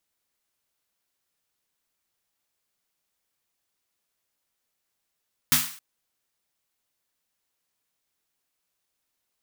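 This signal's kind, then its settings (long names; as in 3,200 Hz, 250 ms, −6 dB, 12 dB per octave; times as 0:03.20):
synth snare length 0.27 s, tones 150 Hz, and 250 Hz, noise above 1,000 Hz, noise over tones 11 dB, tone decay 0.31 s, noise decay 0.49 s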